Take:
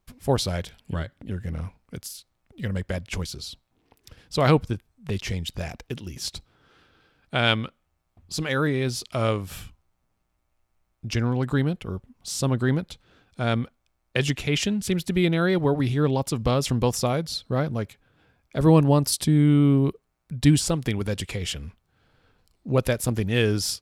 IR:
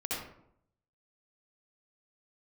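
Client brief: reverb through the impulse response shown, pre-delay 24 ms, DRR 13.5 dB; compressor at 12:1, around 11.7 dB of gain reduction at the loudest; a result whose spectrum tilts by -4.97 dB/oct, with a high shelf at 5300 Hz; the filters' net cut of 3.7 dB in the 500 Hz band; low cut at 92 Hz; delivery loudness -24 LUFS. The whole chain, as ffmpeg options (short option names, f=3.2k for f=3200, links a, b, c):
-filter_complex "[0:a]highpass=92,equalizer=f=500:t=o:g=-4.5,highshelf=f=5.3k:g=-3.5,acompressor=threshold=-24dB:ratio=12,asplit=2[a][b];[1:a]atrim=start_sample=2205,adelay=24[c];[b][c]afir=irnorm=-1:irlink=0,volume=-18dB[d];[a][d]amix=inputs=2:normalize=0,volume=7dB"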